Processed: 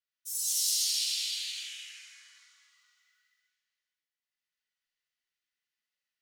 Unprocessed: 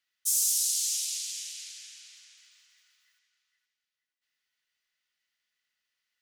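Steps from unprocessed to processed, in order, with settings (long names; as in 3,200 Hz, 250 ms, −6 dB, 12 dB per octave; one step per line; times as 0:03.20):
noise reduction from a noise print of the clip's start 15 dB
floating-point word with a short mantissa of 4 bits
reverb whose tail is shaped and stops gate 400 ms flat, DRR −6.5 dB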